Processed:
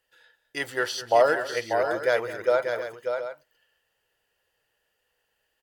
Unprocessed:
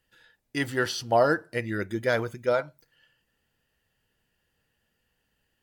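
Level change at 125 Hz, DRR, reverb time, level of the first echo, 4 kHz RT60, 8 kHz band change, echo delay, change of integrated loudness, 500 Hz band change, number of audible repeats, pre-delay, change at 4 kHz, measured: -12.0 dB, none, none, -15.5 dB, none, +1.0 dB, 0.208 s, +1.5 dB, +3.5 dB, 3, none, +1.0 dB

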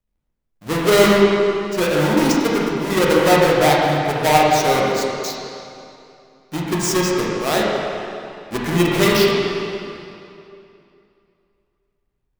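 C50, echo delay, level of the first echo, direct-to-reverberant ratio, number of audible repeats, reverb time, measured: -2.0 dB, none, none, -4.5 dB, none, 2.7 s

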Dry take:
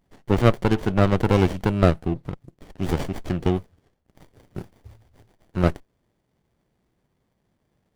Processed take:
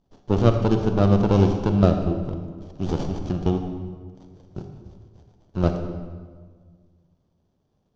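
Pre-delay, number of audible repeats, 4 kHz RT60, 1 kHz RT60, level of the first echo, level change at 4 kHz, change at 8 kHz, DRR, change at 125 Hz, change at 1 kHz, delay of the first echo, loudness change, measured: 33 ms, none, 1.1 s, 1.5 s, none, -3.0 dB, n/a, 5.5 dB, +1.5 dB, -1.5 dB, none, +0.5 dB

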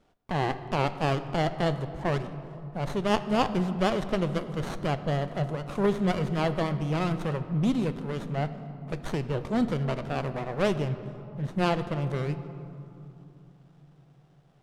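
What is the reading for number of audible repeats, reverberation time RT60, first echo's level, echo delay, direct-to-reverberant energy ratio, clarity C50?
none, 2.9 s, none, none, 11.0 dB, 12.0 dB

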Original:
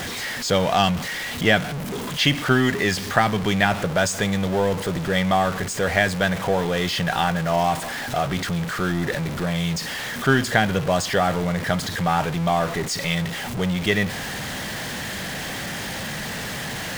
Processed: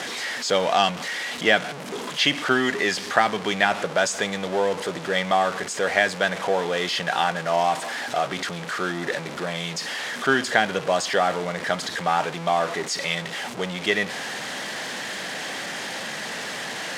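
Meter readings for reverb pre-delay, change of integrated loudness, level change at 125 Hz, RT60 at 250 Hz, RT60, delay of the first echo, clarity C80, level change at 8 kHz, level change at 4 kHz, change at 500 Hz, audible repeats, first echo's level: none, -1.5 dB, -12.0 dB, none, none, none, none, -1.5 dB, 0.0 dB, -0.5 dB, none, none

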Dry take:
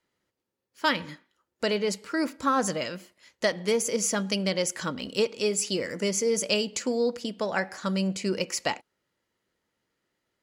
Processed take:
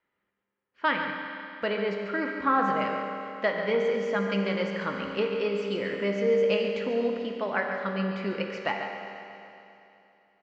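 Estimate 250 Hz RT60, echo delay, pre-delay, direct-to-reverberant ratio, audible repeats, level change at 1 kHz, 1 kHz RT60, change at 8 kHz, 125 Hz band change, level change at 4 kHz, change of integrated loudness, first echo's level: 2.9 s, 0.141 s, 5 ms, 0.5 dB, 1, +3.0 dB, 2.9 s, under -25 dB, -1.5 dB, -7.0 dB, -0.5 dB, -9.5 dB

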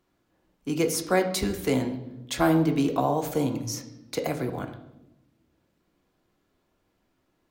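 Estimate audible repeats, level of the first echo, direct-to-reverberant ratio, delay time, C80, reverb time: none, none, 5.0 dB, none, 12.5 dB, 0.90 s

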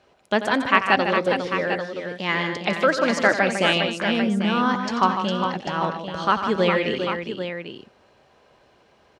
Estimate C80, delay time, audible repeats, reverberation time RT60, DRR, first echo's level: none, 90 ms, 4, none, none, -12.0 dB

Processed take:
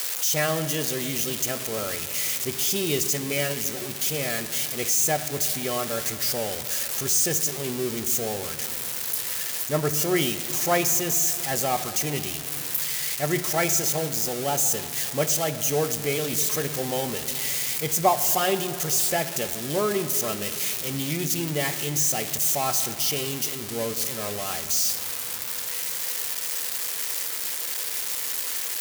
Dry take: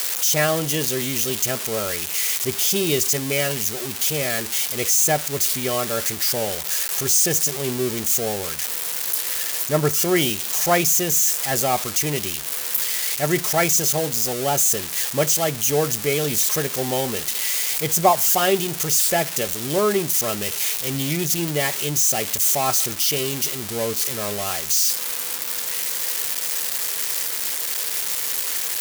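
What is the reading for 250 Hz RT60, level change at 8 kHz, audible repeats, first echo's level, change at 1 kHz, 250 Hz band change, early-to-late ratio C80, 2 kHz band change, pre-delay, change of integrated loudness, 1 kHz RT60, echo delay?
4.2 s, -4.5 dB, none, none, -4.0 dB, -3.5 dB, 11.5 dB, -4.0 dB, 4 ms, -4.0 dB, 2.9 s, none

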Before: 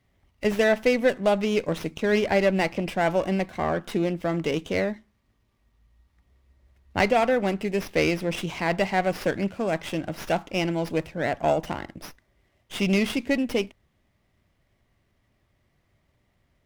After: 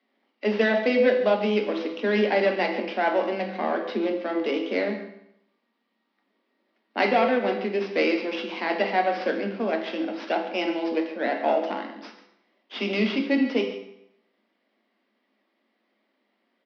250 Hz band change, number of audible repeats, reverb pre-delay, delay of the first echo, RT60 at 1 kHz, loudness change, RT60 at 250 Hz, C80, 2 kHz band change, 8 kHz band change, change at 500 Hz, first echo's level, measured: 0.0 dB, 1, 6 ms, 0.14 s, 0.80 s, 0.0 dB, 0.80 s, 9.0 dB, +0.5 dB, under -15 dB, +0.5 dB, -15.0 dB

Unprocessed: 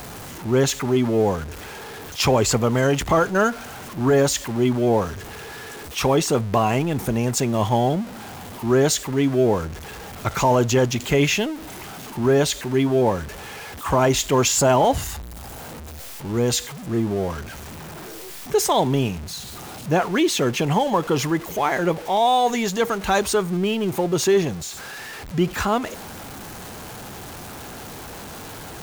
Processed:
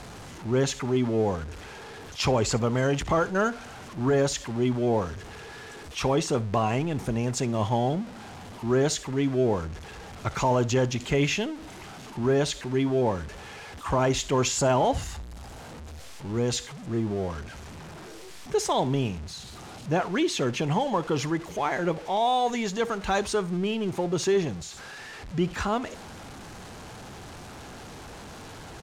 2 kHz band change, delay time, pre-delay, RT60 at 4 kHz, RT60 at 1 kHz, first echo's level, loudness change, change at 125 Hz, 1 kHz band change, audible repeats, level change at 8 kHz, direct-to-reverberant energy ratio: -6.0 dB, 63 ms, none, none, none, -20.5 dB, -5.5 dB, -4.5 dB, -6.0 dB, 1, -8.0 dB, none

